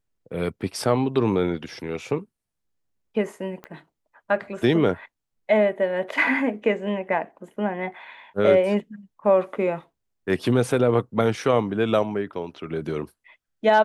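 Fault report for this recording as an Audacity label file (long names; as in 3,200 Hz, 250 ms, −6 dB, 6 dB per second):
3.640000	3.640000	click −24 dBFS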